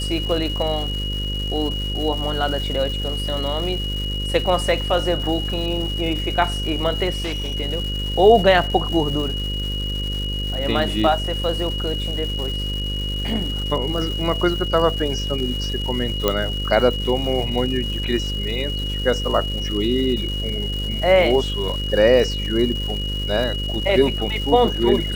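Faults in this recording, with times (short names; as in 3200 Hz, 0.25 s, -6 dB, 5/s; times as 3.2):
buzz 50 Hz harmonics 11 -26 dBFS
crackle 450/s -29 dBFS
tone 2900 Hz -27 dBFS
7.1–7.56 clipped -21.5 dBFS
16.28 pop -4 dBFS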